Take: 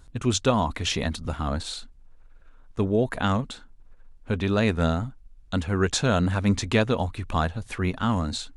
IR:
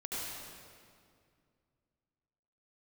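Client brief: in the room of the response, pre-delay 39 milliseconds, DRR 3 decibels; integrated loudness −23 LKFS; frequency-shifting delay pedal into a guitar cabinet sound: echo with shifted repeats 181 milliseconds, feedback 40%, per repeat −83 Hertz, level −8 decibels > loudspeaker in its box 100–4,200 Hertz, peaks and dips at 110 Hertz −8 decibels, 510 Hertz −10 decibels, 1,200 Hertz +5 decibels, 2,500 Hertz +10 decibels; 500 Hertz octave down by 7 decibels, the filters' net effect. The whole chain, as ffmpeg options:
-filter_complex "[0:a]equalizer=frequency=500:width_type=o:gain=-4.5,asplit=2[link_01][link_02];[1:a]atrim=start_sample=2205,adelay=39[link_03];[link_02][link_03]afir=irnorm=-1:irlink=0,volume=-6dB[link_04];[link_01][link_04]amix=inputs=2:normalize=0,asplit=6[link_05][link_06][link_07][link_08][link_09][link_10];[link_06]adelay=181,afreqshift=-83,volume=-8dB[link_11];[link_07]adelay=362,afreqshift=-166,volume=-16dB[link_12];[link_08]adelay=543,afreqshift=-249,volume=-23.9dB[link_13];[link_09]adelay=724,afreqshift=-332,volume=-31.9dB[link_14];[link_10]adelay=905,afreqshift=-415,volume=-39.8dB[link_15];[link_05][link_11][link_12][link_13][link_14][link_15]amix=inputs=6:normalize=0,highpass=100,equalizer=frequency=110:width_type=q:width=4:gain=-8,equalizer=frequency=510:width_type=q:width=4:gain=-10,equalizer=frequency=1200:width_type=q:width=4:gain=5,equalizer=frequency=2500:width_type=q:width=4:gain=10,lowpass=frequency=4200:width=0.5412,lowpass=frequency=4200:width=1.3066,volume=2dB"

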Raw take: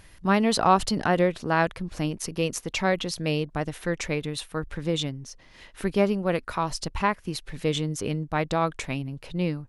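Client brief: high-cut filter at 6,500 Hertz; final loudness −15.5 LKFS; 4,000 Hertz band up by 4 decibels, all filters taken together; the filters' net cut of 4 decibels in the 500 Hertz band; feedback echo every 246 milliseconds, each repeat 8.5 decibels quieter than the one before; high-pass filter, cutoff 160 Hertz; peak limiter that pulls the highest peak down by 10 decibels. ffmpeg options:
ffmpeg -i in.wav -af "highpass=160,lowpass=6500,equalizer=frequency=500:width_type=o:gain=-5,equalizer=frequency=4000:width_type=o:gain=5.5,alimiter=limit=-17.5dB:level=0:latency=1,aecho=1:1:246|492|738|984:0.376|0.143|0.0543|0.0206,volume=14.5dB" out.wav

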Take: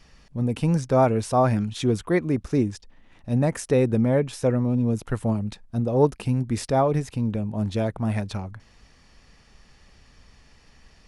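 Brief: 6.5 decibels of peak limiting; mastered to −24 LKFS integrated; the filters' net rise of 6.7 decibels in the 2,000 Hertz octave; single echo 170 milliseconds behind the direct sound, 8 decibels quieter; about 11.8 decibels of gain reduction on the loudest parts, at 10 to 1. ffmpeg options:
ffmpeg -i in.wav -af "equalizer=frequency=2000:width_type=o:gain=8,acompressor=threshold=-25dB:ratio=10,alimiter=limit=-22dB:level=0:latency=1,aecho=1:1:170:0.398,volume=8dB" out.wav

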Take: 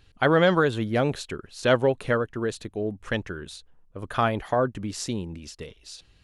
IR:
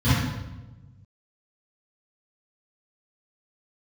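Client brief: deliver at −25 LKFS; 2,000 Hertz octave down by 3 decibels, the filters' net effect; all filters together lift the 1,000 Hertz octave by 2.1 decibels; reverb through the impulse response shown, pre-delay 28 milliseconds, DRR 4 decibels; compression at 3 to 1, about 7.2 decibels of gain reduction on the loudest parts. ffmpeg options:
-filter_complex "[0:a]equalizer=frequency=1000:width_type=o:gain=5,equalizer=frequency=2000:width_type=o:gain=-7,acompressor=threshold=-24dB:ratio=3,asplit=2[link_01][link_02];[1:a]atrim=start_sample=2205,adelay=28[link_03];[link_02][link_03]afir=irnorm=-1:irlink=0,volume=-21dB[link_04];[link_01][link_04]amix=inputs=2:normalize=0,volume=-4dB"

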